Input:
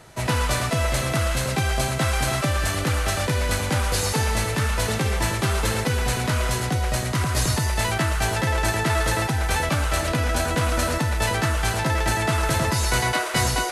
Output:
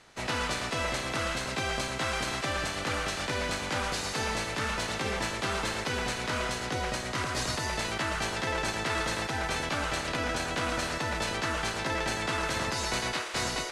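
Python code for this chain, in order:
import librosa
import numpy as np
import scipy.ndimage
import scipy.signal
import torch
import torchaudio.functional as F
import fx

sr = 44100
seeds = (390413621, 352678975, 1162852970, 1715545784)

y = fx.spec_clip(x, sr, under_db=15)
y = scipy.signal.sosfilt(scipy.signal.butter(2, 6500.0, 'lowpass', fs=sr, output='sos'), y)
y = y * 10.0 ** (-8.5 / 20.0)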